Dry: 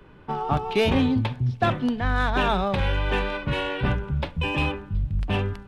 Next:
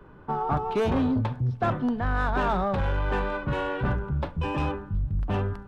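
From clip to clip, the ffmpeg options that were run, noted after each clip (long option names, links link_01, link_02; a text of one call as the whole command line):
ffmpeg -i in.wav -af "asoftclip=type=tanh:threshold=-19dB,highshelf=frequency=1800:width_type=q:width=1.5:gain=-7.5" out.wav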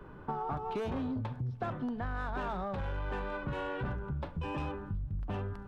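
ffmpeg -i in.wav -af "acompressor=threshold=-34dB:ratio=6" out.wav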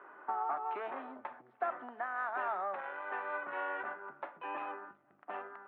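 ffmpeg -i in.wav -af "highpass=frequency=410:width=0.5412,highpass=frequency=410:width=1.3066,equalizer=frequency=470:width_type=q:width=4:gain=-10,equalizer=frequency=710:width_type=q:width=4:gain=4,equalizer=frequency=1300:width_type=q:width=4:gain=5,equalizer=frequency=1900:width_type=q:width=4:gain=5,lowpass=frequency=2400:width=0.5412,lowpass=frequency=2400:width=1.3066" out.wav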